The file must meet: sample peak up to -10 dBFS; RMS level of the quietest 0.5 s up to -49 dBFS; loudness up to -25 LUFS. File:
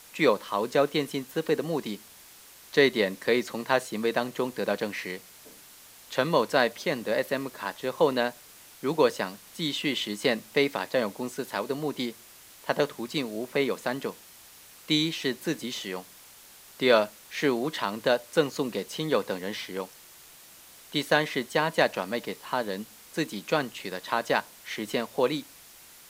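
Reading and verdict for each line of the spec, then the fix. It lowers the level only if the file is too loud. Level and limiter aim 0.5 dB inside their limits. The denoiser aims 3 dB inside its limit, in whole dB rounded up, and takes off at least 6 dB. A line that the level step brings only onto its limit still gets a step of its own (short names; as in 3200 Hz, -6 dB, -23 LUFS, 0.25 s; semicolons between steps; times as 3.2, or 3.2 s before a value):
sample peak -7.5 dBFS: fail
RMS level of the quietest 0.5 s -51 dBFS: OK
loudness -28.0 LUFS: OK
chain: limiter -10.5 dBFS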